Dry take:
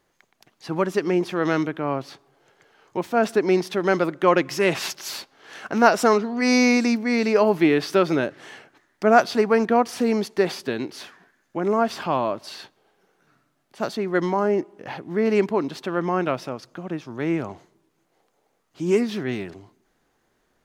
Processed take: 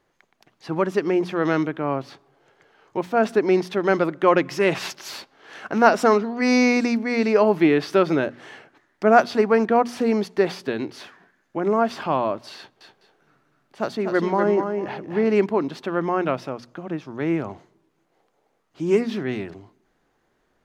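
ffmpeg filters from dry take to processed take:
-filter_complex "[0:a]asettb=1/sr,asplit=3[a][b][c];[a]atrim=end=12.564[d];[b]atrim=start=12.56:end=15.33,asetpts=PTS-STARTPTS,afade=t=in:d=0.004:c=qsin,afade=t=out:st=2.766:d=0.004:c=qsin,aecho=1:1:246|449:0.501|0.126,atrim=end_sample=122157[e];[c]atrim=start=15.326[f];[d][e]acrossfade=d=0.004:c1=hsin:c2=qsin[g];[g][f]acrossfade=d=0.004:c1=qsin:c2=hsin,highshelf=f=5k:g=-9,bandreject=f=60:t=h:w=6,bandreject=f=120:t=h:w=6,bandreject=f=180:t=h:w=6,bandreject=f=240:t=h:w=6,volume=1dB"

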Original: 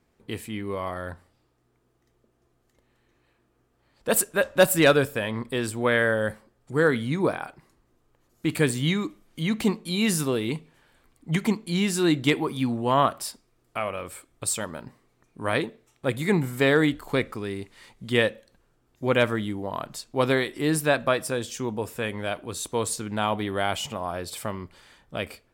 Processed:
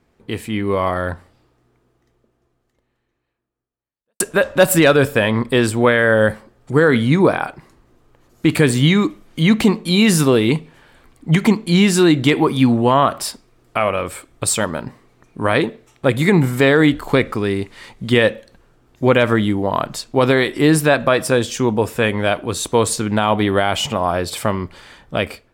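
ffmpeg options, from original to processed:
-filter_complex "[0:a]asplit=2[a][b];[a]atrim=end=4.2,asetpts=PTS-STARTPTS,afade=t=out:st=1.04:d=3.16:c=qua[c];[b]atrim=start=4.2,asetpts=PTS-STARTPTS,afade=t=in:d=0.004:c=hsin[d];[c][d]concat=n=2:v=0:a=1,highshelf=f=6.3k:g=-7,alimiter=limit=-16dB:level=0:latency=1:release=93,dynaudnorm=f=190:g=5:m=5.5dB,volume=7dB"

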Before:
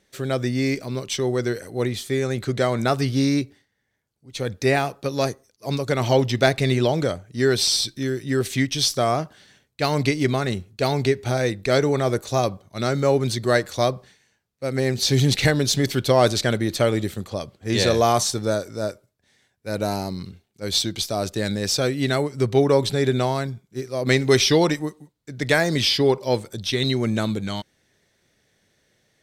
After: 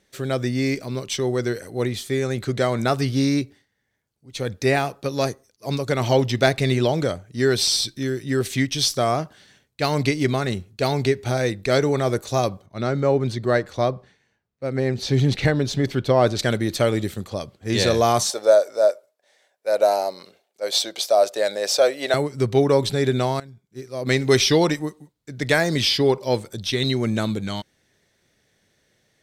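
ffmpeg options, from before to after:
-filter_complex "[0:a]asettb=1/sr,asplit=3[a][b][c];[a]atrim=end=12.664[d];[b]atrim=start=12.66:end=16.39,asetpts=PTS-STARTPTS,afade=t=in:d=0.004:c=qsin,afade=t=out:st=3.726:d=0.004:c=qsin,lowpass=f=1.9k:p=1[e];[c]atrim=start=16.386[f];[d][e]acrossfade=d=0.004:c1=hsin:c2=qsin[g];[g][f]acrossfade=d=0.004:c1=qsin:c2=hsin,asettb=1/sr,asplit=3[h][i][j];[h]atrim=end=18.304[k];[i]atrim=start=18.3:end=22.14,asetpts=PTS-STARTPTS,afade=t=in:d=0.004:c=qsin,afade=t=out:st=3.836:d=0.004:c=qsin,highpass=f=590:t=q:w=3.9[l];[j]atrim=start=22.136[m];[k][l]acrossfade=d=0.004:c1=hsin:c2=qsin[n];[n][m]acrossfade=d=0.004:c1=qsin:c2=hsin,asplit=2[o][p];[o]atrim=end=23.4,asetpts=PTS-STARTPTS,afade=t=out:st=23.396:d=0.004:c=hsin:silence=0.125893[q];[p]atrim=start=23.4,asetpts=PTS-STARTPTS,afade=t=in:d=0.91:silence=0.125893[r];[q][r]concat=n=2:v=0:a=1"

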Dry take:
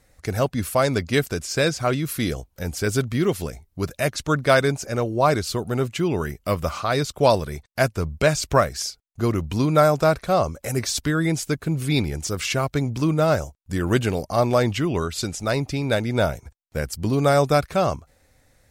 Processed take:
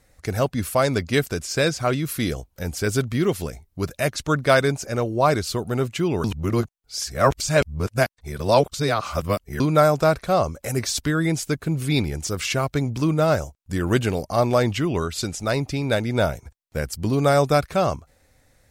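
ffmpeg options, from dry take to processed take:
-filter_complex "[0:a]asplit=3[a][b][c];[a]atrim=end=6.242[d];[b]atrim=start=6.238:end=9.602,asetpts=PTS-STARTPTS,areverse[e];[c]atrim=start=9.598[f];[d][e]acrossfade=d=0.004:c1=hsin:c2=hsin[g];[g][f]acrossfade=d=0.004:c1=hsin:c2=hsin"

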